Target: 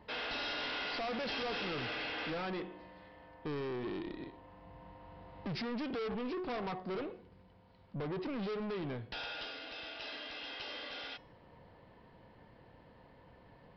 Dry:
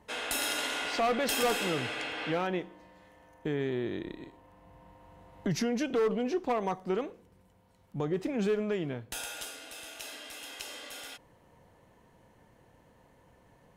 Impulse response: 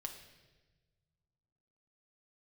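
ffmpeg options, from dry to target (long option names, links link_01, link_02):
-af "bandreject=frequency=367.8:width_type=h:width=4,bandreject=frequency=735.6:width_type=h:width=4,bandreject=frequency=1103.4:width_type=h:width=4,bandreject=frequency=1471.2:width_type=h:width=4,bandreject=frequency=1839:width_type=h:width=4,bandreject=frequency=2206.8:width_type=h:width=4,bandreject=frequency=2574.6:width_type=h:width=4,bandreject=frequency=2942.4:width_type=h:width=4,bandreject=frequency=3310.2:width_type=h:width=4,bandreject=frequency=3678:width_type=h:width=4,bandreject=frequency=4045.8:width_type=h:width=4,bandreject=frequency=4413.6:width_type=h:width=4,bandreject=frequency=4781.4:width_type=h:width=4,bandreject=frequency=5149.2:width_type=h:width=4,bandreject=frequency=5517:width_type=h:width=4,bandreject=frequency=5884.8:width_type=h:width=4,bandreject=frequency=6252.6:width_type=h:width=4,bandreject=frequency=6620.4:width_type=h:width=4,bandreject=frequency=6988.2:width_type=h:width=4,bandreject=frequency=7356:width_type=h:width=4,bandreject=frequency=7723.8:width_type=h:width=4,bandreject=frequency=8091.6:width_type=h:width=4,bandreject=frequency=8459.4:width_type=h:width=4,bandreject=frequency=8827.2:width_type=h:width=4,bandreject=frequency=9195:width_type=h:width=4,bandreject=frequency=9562.8:width_type=h:width=4,bandreject=frequency=9930.6:width_type=h:width=4,bandreject=frequency=10298.4:width_type=h:width=4,bandreject=frequency=10666.2:width_type=h:width=4,bandreject=frequency=11034:width_type=h:width=4,bandreject=frequency=11401.8:width_type=h:width=4,bandreject=frequency=11769.6:width_type=h:width=4,bandreject=frequency=12137.4:width_type=h:width=4,aresample=11025,asoftclip=type=tanh:threshold=-38dB,aresample=44100,volume=2dB"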